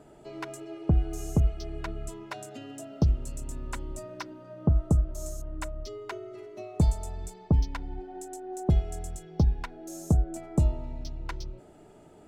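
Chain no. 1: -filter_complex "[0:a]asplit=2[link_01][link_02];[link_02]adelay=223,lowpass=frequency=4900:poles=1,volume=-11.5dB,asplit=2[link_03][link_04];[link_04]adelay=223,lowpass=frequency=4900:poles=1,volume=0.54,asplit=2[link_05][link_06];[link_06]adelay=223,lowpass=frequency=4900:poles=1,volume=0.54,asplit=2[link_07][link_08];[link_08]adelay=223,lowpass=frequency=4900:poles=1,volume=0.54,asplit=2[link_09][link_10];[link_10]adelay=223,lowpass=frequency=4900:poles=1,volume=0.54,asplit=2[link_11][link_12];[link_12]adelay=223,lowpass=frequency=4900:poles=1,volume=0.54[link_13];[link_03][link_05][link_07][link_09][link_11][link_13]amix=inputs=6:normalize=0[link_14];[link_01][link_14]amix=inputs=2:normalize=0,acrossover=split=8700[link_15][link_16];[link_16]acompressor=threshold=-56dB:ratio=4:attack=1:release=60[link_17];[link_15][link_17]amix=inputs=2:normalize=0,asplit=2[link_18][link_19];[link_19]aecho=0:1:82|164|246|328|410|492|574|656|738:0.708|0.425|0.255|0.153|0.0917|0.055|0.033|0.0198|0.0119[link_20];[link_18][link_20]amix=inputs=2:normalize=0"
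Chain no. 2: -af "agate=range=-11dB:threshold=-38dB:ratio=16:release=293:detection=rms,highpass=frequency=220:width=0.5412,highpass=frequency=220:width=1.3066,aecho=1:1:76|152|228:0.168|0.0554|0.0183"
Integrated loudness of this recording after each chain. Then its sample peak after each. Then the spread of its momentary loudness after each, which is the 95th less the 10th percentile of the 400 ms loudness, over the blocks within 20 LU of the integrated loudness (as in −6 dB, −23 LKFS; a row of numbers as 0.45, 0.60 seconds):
−28.5, −39.5 LKFS; −9.0, −15.5 dBFS; 13, 9 LU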